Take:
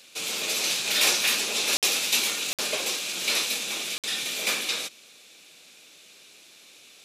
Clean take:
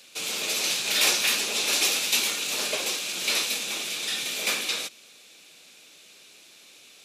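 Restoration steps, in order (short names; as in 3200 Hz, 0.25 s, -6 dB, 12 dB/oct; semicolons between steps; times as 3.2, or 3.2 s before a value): interpolate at 1.77/2.53/3.98, 57 ms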